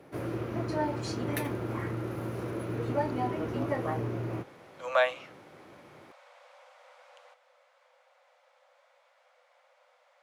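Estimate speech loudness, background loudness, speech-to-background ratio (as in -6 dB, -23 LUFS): -30.0 LUFS, -33.5 LUFS, 3.5 dB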